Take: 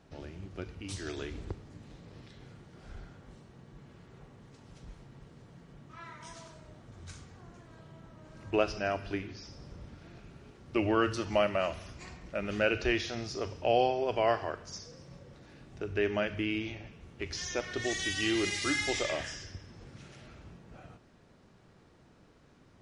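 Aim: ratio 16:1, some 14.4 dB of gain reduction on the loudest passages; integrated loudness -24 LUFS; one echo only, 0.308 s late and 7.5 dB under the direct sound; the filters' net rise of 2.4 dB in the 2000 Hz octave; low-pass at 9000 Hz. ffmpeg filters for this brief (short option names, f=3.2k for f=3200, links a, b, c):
-af "lowpass=9k,equalizer=f=2k:t=o:g=3,acompressor=threshold=-35dB:ratio=16,aecho=1:1:308:0.422,volume=18dB"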